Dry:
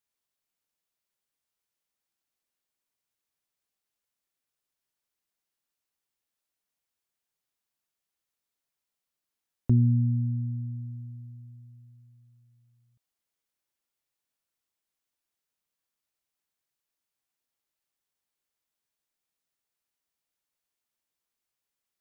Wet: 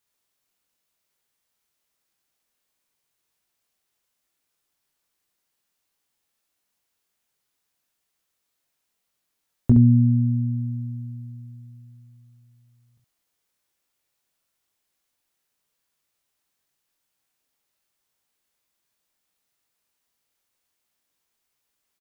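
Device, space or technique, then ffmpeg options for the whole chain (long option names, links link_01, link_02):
slapback doubling: -filter_complex "[0:a]asplit=3[link_01][link_02][link_03];[link_02]adelay=21,volume=-5dB[link_04];[link_03]adelay=68,volume=-5dB[link_05];[link_01][link_04][link_05]amix=inputs=3:normalize=0,volume=7dB"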